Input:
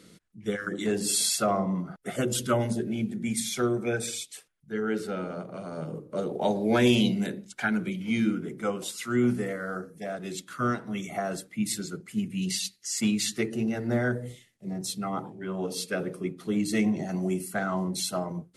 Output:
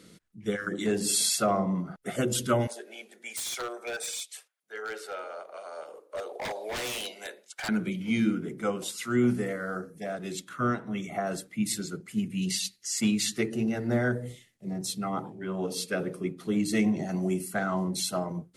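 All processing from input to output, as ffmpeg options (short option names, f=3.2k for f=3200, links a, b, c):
-filter_complex "[0:a]asettb=1/sr,asplit=3[a][b][c];[a]atrim=end=2.674[d];[b]atrim=start=2.67:end=7.69,asetpts=PTS-STARTPTS,afade=t=in:d=0.004:c=qsin,afade=t=out:st=5.016:d=0.004:c=qsin,highpass=f=540:w=0.5412,highpass=f=540:w=1.3066,aeval=exprs='0.0376*(abs(mod(val(0)/0.0376+3,4)-2)-1)':c=same[e];[c]atrim=start=7.686[f];[d][e]acrossfade=d=0.004:c1=hsin:c2=qsin[g];[g][f]acrossfade=d=0.004:c1=qsin:c2=hsin,asettb=1/sr,asplit=3[h][i][j];[h]atrim=end=10.494[k];[i]atrim=start=10.49:end=11.27,asetpts=PTS-STARTPTS,afade=t=in:d=0.004:c=qsin,afade=t=out:st=0.776:d=0.004:c=qsin,highshelf=f=5k:g=-8,bandreject=f=4.7k:w=5.5[l];[j]atrim=start=11.266[m];[k][l]acrossfade=d=0.004:c1=hsin:c2=qsin[n];[n][m]acrossfade=d=0.004:c1=qsin:c2=hsin"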